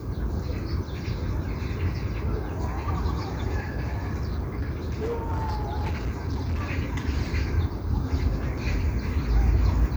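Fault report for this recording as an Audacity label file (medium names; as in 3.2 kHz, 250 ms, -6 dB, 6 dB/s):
3.920000	6.620000	clipped -24 dBFS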